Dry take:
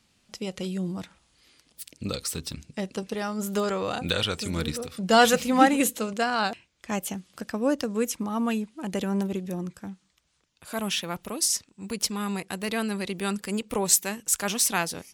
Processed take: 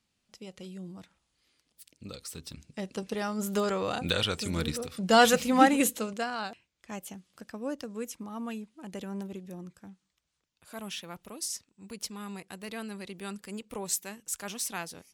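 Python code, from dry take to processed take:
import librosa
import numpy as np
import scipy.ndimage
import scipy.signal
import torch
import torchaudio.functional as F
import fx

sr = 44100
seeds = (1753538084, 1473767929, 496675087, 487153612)

y = fx.gain(x, sr, db=fx.line((2.14, -12.0), (3.14, -2.0), (5.92, -2.0), (6.47, -10.5)))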